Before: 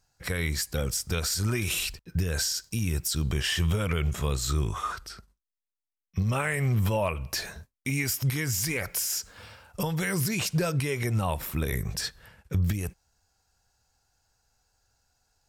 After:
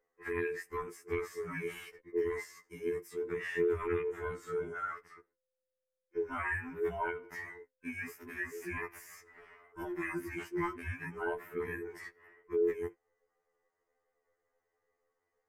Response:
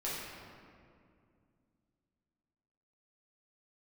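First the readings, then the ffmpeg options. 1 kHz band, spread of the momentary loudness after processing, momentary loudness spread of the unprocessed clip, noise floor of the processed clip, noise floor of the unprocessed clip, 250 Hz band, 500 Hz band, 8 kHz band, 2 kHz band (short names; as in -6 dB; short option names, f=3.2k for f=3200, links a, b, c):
-5.0 dB, 14 LU, 7 LU, under -85 dBFS, under -85 dBFS, -9.0 dB, 0.0 dB, -25.5 dB, -5.5 dB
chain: -af "afftfilt=real='real(if(between(b,1,1008),(2*floor((b-1)/24)+1)*24-b,b),0)':imag='imag(if(between(b,1,1008),(2*floor((b-1)/24)+1)*24-b,b),0)*if(between(b,1,1008),-1,1)':win_size=2048:overlap=0.75,highshelf=f=2.7k:t=q:w=3:g=-13.5,afftfilt=real='re*2*eq(mod(b,4),0)':imag='im*2*eq(mod(b,4),0)':win_size=2048:overlap=0.75,volume=-8dB"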